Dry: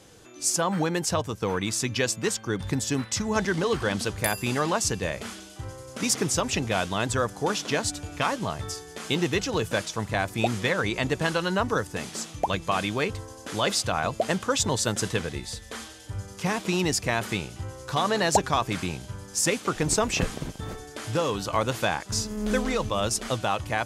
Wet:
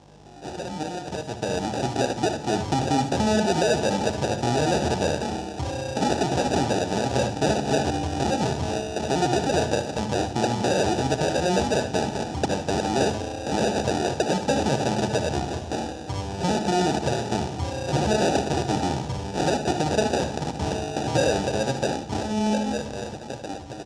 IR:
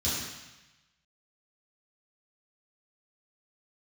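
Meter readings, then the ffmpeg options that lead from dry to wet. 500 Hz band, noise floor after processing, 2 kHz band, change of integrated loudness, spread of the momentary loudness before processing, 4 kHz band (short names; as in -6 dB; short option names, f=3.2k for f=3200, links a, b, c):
+4.0 dB, -36 dBFS, -2.5 dB, +2.0 dB, 11 LU, -0.5 dB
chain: -filter_complex "[0:a]highshelf=f=4.7k:g=-8.5,acompressor=threshold=-35dB:ratio=1.5,alimiter=limit=-22dB:level=0:latency=1:release=227,dynaudnorm=f=110:g=31:m=13dB,aeval=exprs='val(0)+0.00631*(sin(2*PI*50*n/s)+sin(2*PI*2*50*n/s)/2+sin(2*PI*3*50*n/s)/3+sin(2*PI*4*50*n/s)/4+sin(2*PI*5*50*n/s)/5)':c=same,acrusher=samples=41:mix=1:aa=0.000001,asoftclip=type=tanh:threshold=-15dB,highpass=130,equalizer=f=200:t=q:w=4:g=-4,equalizer=f=810:t=q:w=4:g=8,equalizer=f=1.3k:t=q:w=4:g=-7,equalizer=f=2.1k:t=q:w=4:g=-8,equalizer=f=5.6k:t=q:w=4:g=4,lowpass=f=8.3k:w=0.5412,lowpass=f=8.3k:w=1.3066,aecho=1:1:61|75:0.251|0.266,asplit=2[a][b];[1:a]atrim=start_sample=2205,lowshelf=f=89:g=11.5[c];[b][c]afir=irnorm=-1:irlink=0,volume=-23.5dB[d];[a][d]amix=inputs=2:normalize=0"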